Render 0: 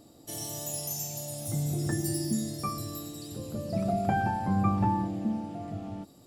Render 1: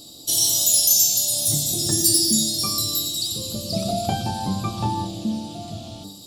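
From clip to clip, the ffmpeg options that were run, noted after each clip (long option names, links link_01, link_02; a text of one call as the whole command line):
ffmpeg -i in.wav -af "highshelf=frequency=2700:width_type=q:width=3:gain=12,bandreject=frequency=49.01:width_type=h:width=4,bandreject=frequency=98.02:width_type=h:width=4,bandreject=frequency=147.03:width_type=h:width=4,bandreject=frequency=196.04:width_type=h:width=4,bandreject=frequency=245.05:width_type=h:width=4,bandreject=frequency=294.06:width_type=h:width=4,bandreject=frequency=343.07:width_type=h:width=4,bandreject=frequency=392.08:width_type=h:width=4,bandreject=frequency=441.09:width_type=h:width=4,bandreject=frequency=490.1:width_type=h:width=4,bandreject=frequency=539.11:width_type=h:width=4,bandreject=frequency=588.12:width_type=h:width=4,bandreject=frequency=637.13:width_type=h:width=4,bandreject=frequency=686.14:width_type=h:width=4,bandreject=frequency=735.15:width_type=h:width=4,bandreject=frequency=784.16:width_type=h:width=4,bandreject=frequency=833.17:width_type=h:width=4,bandreject=frequency=882.18:width_type=h:width=4,bandreject=frequency=931.19:width_type=h:width=4,bandreject=frequency=980.2:width_type=h:width=4,bandreject=frequency=1029.21:width_type=h:width=4,bandreject=frequency=1078.22:width_type=h:width=4,bandreject=frequency=1127.23:width_type=h:width=4,bandreject=frequency=1176.24:width_type=h:width=4,bandreject=frequency=1225.25:width_type=h:width=4,bandreject=frequency=1274.26:width_type=h:width=4,bandreject=frequency=1323.27:width_type=h:width=4,bandreject=frequency=1372.28:width_type=h:width=4,bandreject=frequency=1421.29:width_type=h:width=4,bandreject=frequency=1470.3:width_type=h:width=4,bandreject=frequency=1519.31:width_type=h:width=4,bandreject=frequency=1568.32:width_type=h:width=4,bandreject=frequency=1617.33:width_type=h:width=4,bandreject=frequency=1666.34:width_type=h:width=4,bandreject=frequency=1715.35:width_type=h:width=4,bandreject=frequency=1764.36:width_type=h:width=4,bandreject=frequency=1813.37:width_type=h:width=4,bandreject=frequency=1862.38:width_type=h:width=4,bandreject=frequency=1911.39:width_type=h:width=4,volume=5.5dB" out.wav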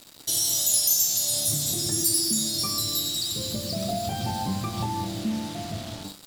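ffmpeg -i in.wav -filter_complex "[0:a]acrossover=split=7200[link_01][link_02];[link_01]alimiter=limit=-20dB:level=0:latency=1:release=118[link_03];[link_02]flanger=delay=8.1:depth=9.2:regen=-39:speed=1.8:shape=sinusoidal[link_04];[link_03][link_04]amix=inputs=2:normalize=0,acrusher=bits=5:mix=0:aa=0.5" out.wav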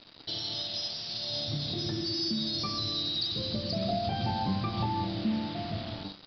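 ffmpeg -i in.wav -af "aresample=11025,aresample=44100,volume=-1.5dB" out.wav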